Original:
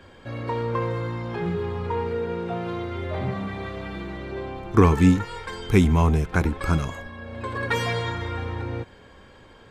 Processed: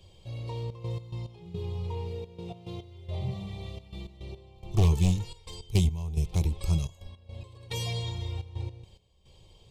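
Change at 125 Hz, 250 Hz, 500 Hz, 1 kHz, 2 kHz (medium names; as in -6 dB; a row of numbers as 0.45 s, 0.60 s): -4.0 dB, -12.0 dB, -13.5 dB, -17.0 dB, -17.5 dB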